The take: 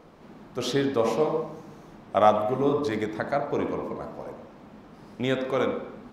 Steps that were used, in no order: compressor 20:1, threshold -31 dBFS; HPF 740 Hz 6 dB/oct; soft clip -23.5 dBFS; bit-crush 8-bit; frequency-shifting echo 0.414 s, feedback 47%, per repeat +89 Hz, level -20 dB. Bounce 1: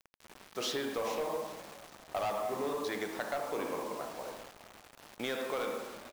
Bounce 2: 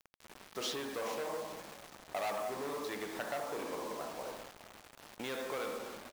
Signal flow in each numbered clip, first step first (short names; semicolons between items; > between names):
HPF > soft clip > compressor > bit-crush > frequency-shifting echo; soft clip > compressor > HPF > bit-crush > frequency-shifting echo